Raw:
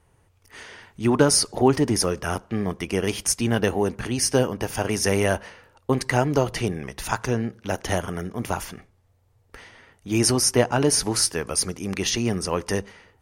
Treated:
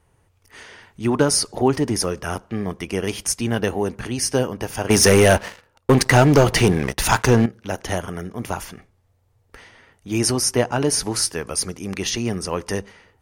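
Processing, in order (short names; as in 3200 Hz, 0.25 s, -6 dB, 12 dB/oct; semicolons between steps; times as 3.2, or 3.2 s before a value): 4.9–7.46 sample leveller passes 3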